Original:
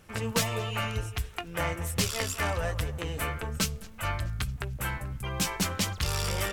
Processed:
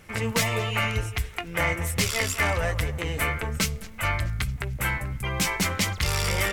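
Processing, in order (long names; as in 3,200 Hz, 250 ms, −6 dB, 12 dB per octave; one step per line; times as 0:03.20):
in parallel at +1 dB: brickwall limiter −20 dBFS, peak gain reduction 8 dB
on the sum: parametric band 2,100 Hz +9 dB 0.29 octaves
level −2 dB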